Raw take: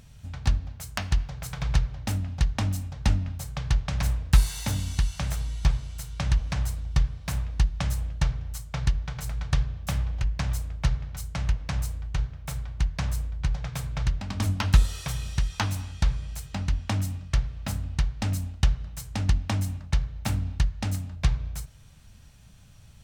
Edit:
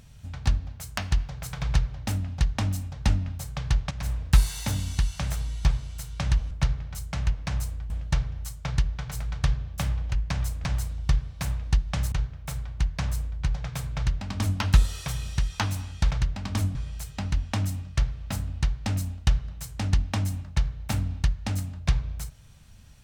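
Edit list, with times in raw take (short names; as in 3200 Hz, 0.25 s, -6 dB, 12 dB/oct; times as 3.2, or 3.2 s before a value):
3.91–4.23 fade in, from -12 dB
6.51–7.99 swap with 10.73–12.12
13.96–14.6 copy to 16.11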